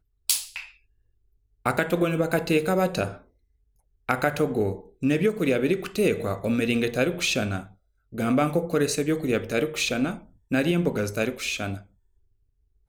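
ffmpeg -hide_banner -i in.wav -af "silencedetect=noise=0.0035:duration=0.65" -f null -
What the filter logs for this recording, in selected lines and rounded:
silence_start: 0.77
silence_end: 1.66 | silence_duration: 0.89
silence_start: 3.23
silence_end: 4.09 | silence_duration: 0.85
silence_start: 11.86
silence_end: 12.88 | silence_duration: 1.03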